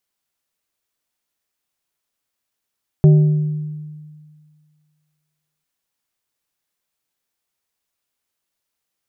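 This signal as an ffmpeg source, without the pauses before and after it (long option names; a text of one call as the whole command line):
ffmpeg -f lavfi -i "aevalsrc='0.562*pow(10,-3*t/1.95)*sin(2*PI*152*t)+0.158*pow(10,-3*t/1.027)*sin(2*PI*380*t)+0.0447*pow(10,-3*t/0.739)*sin(2*PI*608*t)+0.0126*pow(10,-3*t/0.632)*sin(2*PI*760*t)':duration=2.6:sample_rate=44100" out.wav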